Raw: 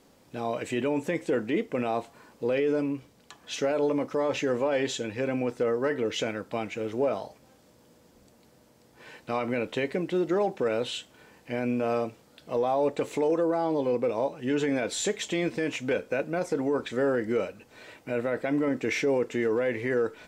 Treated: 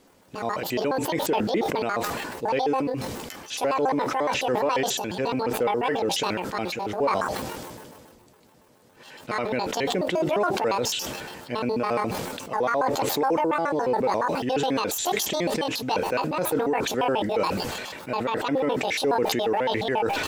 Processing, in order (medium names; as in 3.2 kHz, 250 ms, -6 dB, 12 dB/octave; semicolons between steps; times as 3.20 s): pitch shift switched off and on +10 st, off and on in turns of 70 ms; decay stretcher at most 29 dB/s; trim +2 dB